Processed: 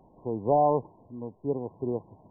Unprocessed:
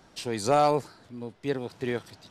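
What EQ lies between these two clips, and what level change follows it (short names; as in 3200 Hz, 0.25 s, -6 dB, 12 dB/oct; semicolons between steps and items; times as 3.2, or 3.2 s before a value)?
brick-wall FIR low-pass 1100 Hz; 0.0 dB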